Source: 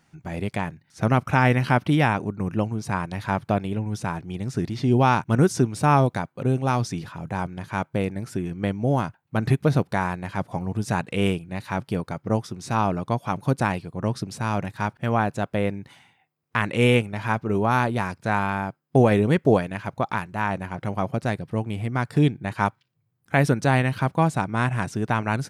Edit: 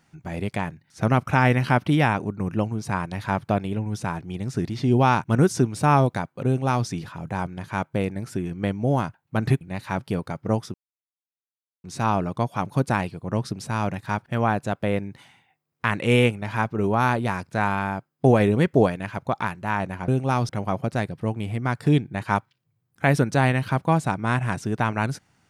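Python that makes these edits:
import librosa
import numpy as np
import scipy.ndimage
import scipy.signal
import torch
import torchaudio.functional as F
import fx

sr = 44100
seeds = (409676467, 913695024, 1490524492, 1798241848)

y = fx.edit(x, sr, fx.duplicate(start_s=6.46, length_s=0.41, to_s=20.79),
    fx.cut(start_s=9.61, length_s=1.81),
    fx.insert_silence(at_s=12.55, length_s=1.1), tone=tone)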